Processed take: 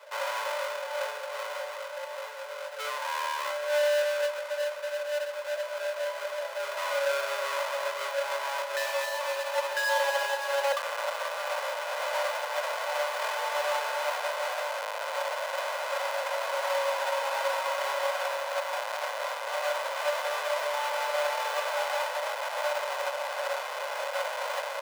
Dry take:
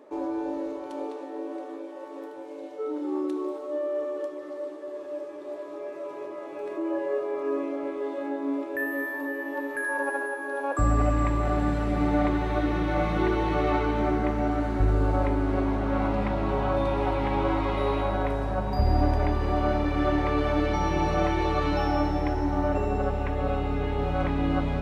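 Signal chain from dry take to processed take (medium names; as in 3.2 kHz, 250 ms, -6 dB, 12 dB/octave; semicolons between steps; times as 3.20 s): square wave that keeps the level; in parallel at -0.5 dB: compressor with a negative ratio -25 dBFS; on the sum: steep high-pass 540 Hz 72 dB/octave; treble shelf 4.3 kHz -9 dB; comb 2 ms, depth 46%; tape echo 361 ms, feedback 77%, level -16 dB, low-pass 2.5 kHz; trim -7 dB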